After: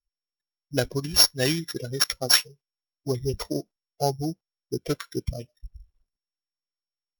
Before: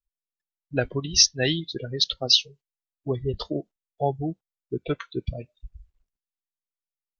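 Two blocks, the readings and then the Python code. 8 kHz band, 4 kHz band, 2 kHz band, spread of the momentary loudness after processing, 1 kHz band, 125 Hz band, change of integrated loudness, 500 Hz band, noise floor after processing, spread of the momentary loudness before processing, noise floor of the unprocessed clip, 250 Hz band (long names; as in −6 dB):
can't be measured, −1.5 dB, +2.0 dB, 17 LU, +0.5 dB, 0.0 dB, 0.0 dB, 0.0 dB, below −85 dBFS, 17 LU, below −85 dBFS, 0.0 dB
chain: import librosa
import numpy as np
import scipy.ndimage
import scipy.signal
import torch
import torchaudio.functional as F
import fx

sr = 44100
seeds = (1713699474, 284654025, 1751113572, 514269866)

y = np.r_[np.sort(x[:len(x) // 8 * 8].reshape(-1, 8), axis=1).ravel(), x[len(x) // 8 * 8:]]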